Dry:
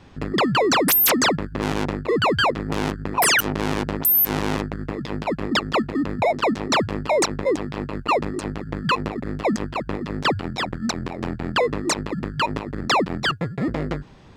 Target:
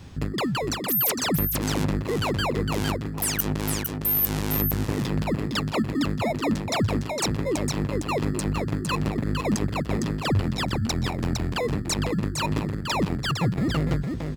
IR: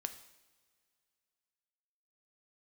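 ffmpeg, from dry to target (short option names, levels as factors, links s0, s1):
-af "aemphasis=mode=production:type=75fm,areverse,acompressor=threshold=0.0631:ratio=5,areverse,equalizer=f=85:w=0.45:g=11.5,aecho=1:1:458:0.562,volume=0.794"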